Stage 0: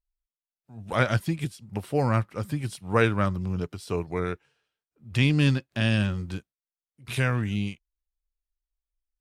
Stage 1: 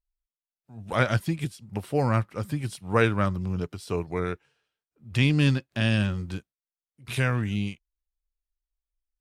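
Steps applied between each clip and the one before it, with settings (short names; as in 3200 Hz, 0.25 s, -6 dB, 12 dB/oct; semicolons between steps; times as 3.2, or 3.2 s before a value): nothing audible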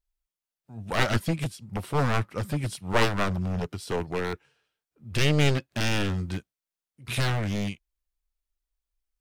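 one-sided fold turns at -24.5 dBFS; gain +2.5 dB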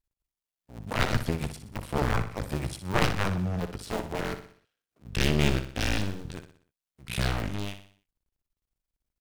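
cycle switcher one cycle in 2, muted; on a send: feedback echo 61 ms, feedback 46%, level -10 dB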